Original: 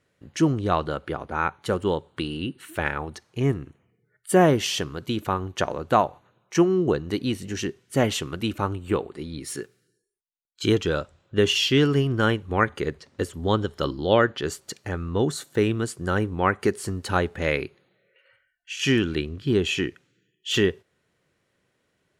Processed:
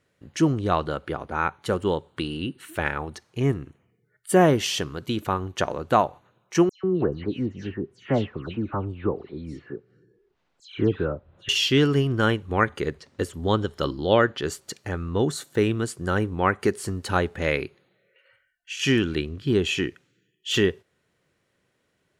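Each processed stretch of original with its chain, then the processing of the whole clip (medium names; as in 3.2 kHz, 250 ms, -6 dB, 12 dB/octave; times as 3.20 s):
6.69–11.49 s: tape spacing loss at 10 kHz 37 dB + phase dispersion lows, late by 147 ms, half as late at 2.6 kHz + upward compressor, threshold -45 dBFS
whole clip: none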